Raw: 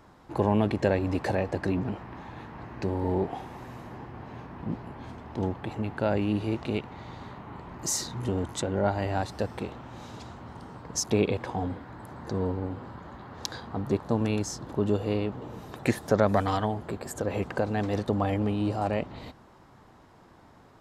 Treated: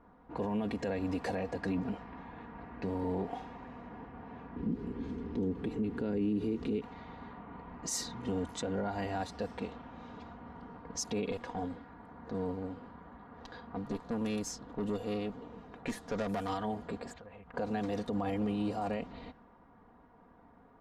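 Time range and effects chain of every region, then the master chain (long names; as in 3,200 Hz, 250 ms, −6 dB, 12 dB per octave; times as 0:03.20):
0:04.56–0:06.82: low shelf with overshoot 510 Hz +8 dB, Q 3 + downward compressor 1.5 to 1, threshold −31 dBFS
0:11.31–0:16.49: high-shelf EQ 6,900 Hz +7 dB + tube saturation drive 22 dB, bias 0.6
0:17.13–0:17.54: parametric band 320 Hz −13.5 dB 1.7 octaves + downward compressor 10 to 1, threshold −41 dBFS + linearly interpolated sample-rate reduction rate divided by 4×
whole clip: comb filter 4.2 ms, depth 64%; brickwall limiter −19 dBFS; low-pass that shuts in the quiet parts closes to 1,400 Hz, open at −25.5 dBFS; level −6 dB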